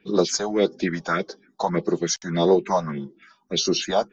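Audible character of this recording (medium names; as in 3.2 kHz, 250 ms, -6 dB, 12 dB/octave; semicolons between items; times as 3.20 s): phasing stages 4, 1.7 Hz, lowest notch 330–2400 Hz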